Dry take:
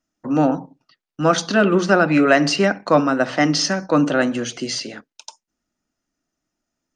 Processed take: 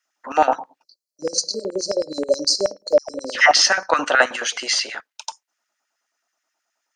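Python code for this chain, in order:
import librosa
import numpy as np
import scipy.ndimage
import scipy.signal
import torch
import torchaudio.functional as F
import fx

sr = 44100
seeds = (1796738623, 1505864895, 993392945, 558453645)

y = fx.spec_erase(x, sr, start_s=0.83, length_s=2.49, low_hz=620.0, high_hz=4000.0)
y = fx.dispersion(y, sr, late='lows', ms=124.0, hz=1200.0, at=(2.98, 3.53))
y = fx.filter_lfo_highpass(y, sr, shape='square', hz=9.4, low_hz=800.0, high_hz=1700.0, q=1.8)
y = F.gain(torch.from_numpy(y), 5.0).numpy()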